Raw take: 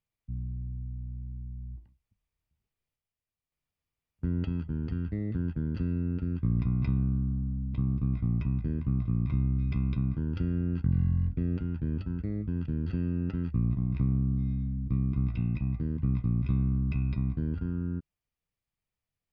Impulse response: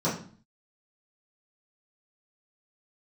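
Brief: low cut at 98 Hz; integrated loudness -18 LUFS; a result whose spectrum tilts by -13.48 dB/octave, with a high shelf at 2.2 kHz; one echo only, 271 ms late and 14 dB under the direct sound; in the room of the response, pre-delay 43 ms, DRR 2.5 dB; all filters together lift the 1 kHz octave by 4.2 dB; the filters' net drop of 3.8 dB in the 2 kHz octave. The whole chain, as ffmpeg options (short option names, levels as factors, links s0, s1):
-filter_complex "[0:a]highpass=98,equalizer=f=1000:t=o:g=8,equalizer=f=2000:t=o:g=-4.5,highshelf=f=2200:g=-6.5,aecho=1:1:271:0.2,asplit=2[s0][s1];[1:a]atrim=start_sample=2205,adelay=43[s2];[s1][s2]afir=irnorm=-1:irlink=0,volume=0.2[s3];[s0][s3]amix=inputs=2:normalize=0,volume=2"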